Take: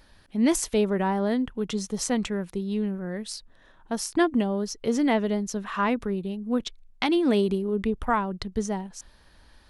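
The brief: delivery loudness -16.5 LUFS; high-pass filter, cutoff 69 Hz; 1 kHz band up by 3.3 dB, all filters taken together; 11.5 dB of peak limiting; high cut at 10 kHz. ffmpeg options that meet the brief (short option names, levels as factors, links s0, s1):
-af "highpass=69,lowpass=10000,equalizer=f=1000:t=o:g=4,volume=4.22,alimiter=limit=0.447:level=0:latency=1"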